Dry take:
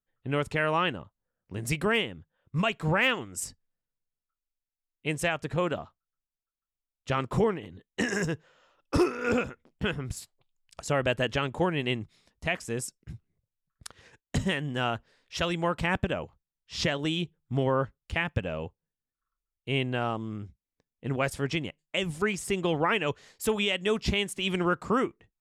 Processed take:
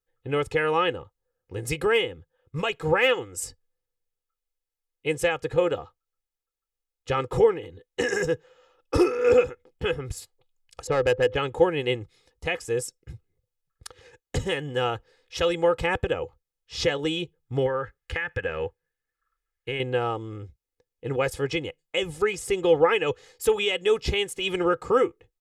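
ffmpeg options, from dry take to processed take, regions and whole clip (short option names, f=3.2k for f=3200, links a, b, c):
-filter_complex "[0:a]asettb=1/sr,asplit=3[a][b][c];[a]atrim=end=10.874[d];[b]atrim=start=10.87:end=11.36,asetpts=PTS-STARTPTS,afade=t=in:d=0.004:c=qsin,afade=t=out:st=0.486:d=0.004:c=qsin,adynamicsmooth=sensitivity=2:basefreq=1.2k,aeval=exprs='val(0)+0.00316*sin(2*PI*510*n/s)':c=same[e];[c]atrim=start=11.356[f];[d][e]acrossfade=d=0.004:c1=hsin:c2=qsin[g];[g][f]acrossfade=d=0.004:c1=qsin:c2=hsin,asettb=1/sr,asplit=3[h][i][j];[h]atrim=end=17.664[k];[i]atrim=start=17.66:end=19.8,asetpts=PTS-STARTPTS,afade=t=in:d=0.004:c=qsin,afade=t=out:st=2.136:d=0.004:c=qsin,equalizer=f=1.7k:t=o:w=0.84:g=14.5,acompressor=threshold=-28dB:ratio=4:attack=3.2:release=140:knee=1:detection=peak[l];[j]atrim=start=19.796[m];[k][l]acrossfade=d=0.004:c1=hsin:c2=qsin[n];[n][m]acrossfade=d=0.004:c1=qsin:c2=hsin,equalizer=f=500:w=7.9:g=11.5,aecho=1:1:2.4:0.68"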